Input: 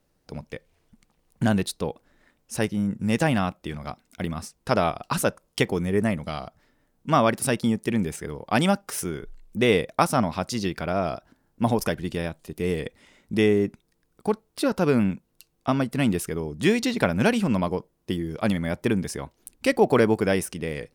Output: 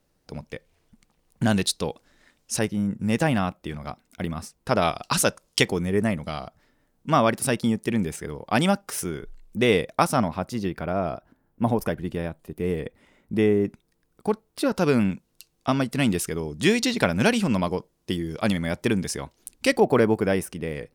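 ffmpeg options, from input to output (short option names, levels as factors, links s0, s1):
-af "asetnsamples=n=441:p=0,asendcmd='1.49 equalizer g 9;2.59 equalizer g -1.5;4.82 equalizer g 9.5;5.72 equalizer g 0.5;10.28 equalizer g -10;13.65 equalizer g -1;14.75 equalizer g 5.5;19.8 equalizer g -5',equalizer=f=5600:t=o:w=2.3:g=1.5"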